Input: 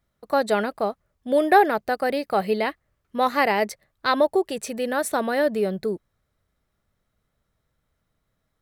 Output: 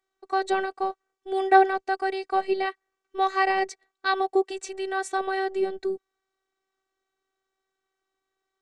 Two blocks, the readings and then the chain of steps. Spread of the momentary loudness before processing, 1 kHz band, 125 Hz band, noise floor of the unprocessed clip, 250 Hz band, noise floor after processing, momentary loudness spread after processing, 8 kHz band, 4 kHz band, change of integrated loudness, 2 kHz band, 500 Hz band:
11 LU, -0.5 dB, no reading, -76 dBFS, -6.0 dB, -84 dBFS, 12 LU, -6.0 dB, -3.5 dB, -3.0 dB, -2.0 dB, -4.5 dB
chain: elliptic band-pass 190–7700 Hz, stop band 40 dB; robot voice 382 Hz

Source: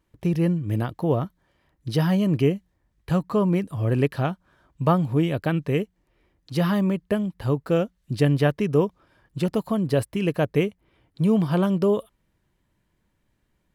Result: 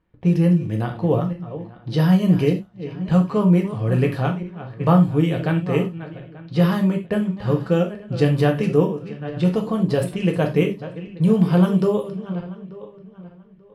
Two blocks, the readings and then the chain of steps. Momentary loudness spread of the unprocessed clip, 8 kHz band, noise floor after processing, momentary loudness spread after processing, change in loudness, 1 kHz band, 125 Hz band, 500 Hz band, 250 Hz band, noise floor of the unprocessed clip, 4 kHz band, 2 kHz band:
8 LU, no reading, -47 dBFS, 15 LU, +3.5 dB, +2.5 dB, +4.5 dB, +2.5 dB, +4.5 dB, -71 dBFS, +2.0 dB, +2.5 dB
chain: backward echo that repeats 443 ms, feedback 47%, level -13 dB; level-controlled noise filter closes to 2.5 kHz, open at -17 dBFS; gated-style reverb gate 120 ms falling, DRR 2 dB

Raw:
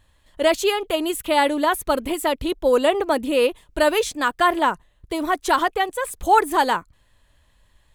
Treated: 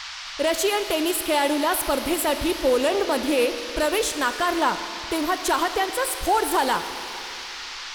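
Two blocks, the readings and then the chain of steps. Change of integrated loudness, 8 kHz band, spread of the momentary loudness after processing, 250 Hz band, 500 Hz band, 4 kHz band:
-2.5 dB, +4.5 dB, 10 LU, -0.5 dB, -2.5 dB, +1.5 dB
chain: treble shelf 9 kHz +11 dB; peak limiter -12.5 dBFS, peak gain reduction 9.5 dB; band noise 880–5500 Hz -36 dBFS; Schroeder reverb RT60 3 s, combs from 26 ms, DRR 9.5 dB; loudspeaker Doppler distortion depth 0.1 ms

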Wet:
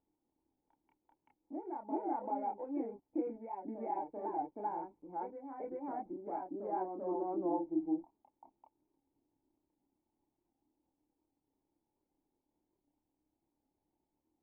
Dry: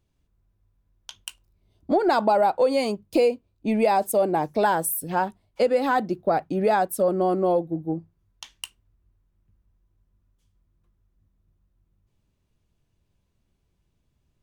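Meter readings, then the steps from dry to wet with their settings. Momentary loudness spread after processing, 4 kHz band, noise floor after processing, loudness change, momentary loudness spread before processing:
8 LU, under -40 dB, under -85 dBFS, -16.5 dB, 18 LU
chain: local Wiener filter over 25 samples; in parallel at -2 dB: compression, threshold -32 dBFS, peak gain reduction 14.5 dB; on the sum: band-pass sweep 1.8 kHz -> 360 Hz, 6.43–10.20 s; crackle 510 per s -58 dBFS; bit crusher 10-bit; cascade formant filter u; chorus voices 6, 0.49 Hz, delay 28 ms, depth 2 ms; on a send: reverse echo 388 ms -5 dB; on the sum: warped record 78 rpm, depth 100 cents; trim +13 dB

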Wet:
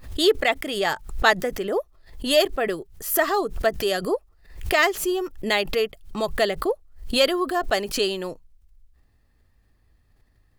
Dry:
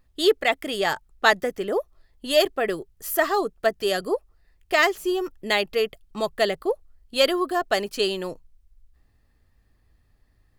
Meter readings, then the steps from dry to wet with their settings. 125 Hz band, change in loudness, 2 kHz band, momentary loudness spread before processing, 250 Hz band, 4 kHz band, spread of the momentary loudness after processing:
no reading, +0.5 dB, +0.5 dB, 9 LU, +1.5 dB, +1.0 dB, 9 LU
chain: swell ahead of each attack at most 110 dB/s

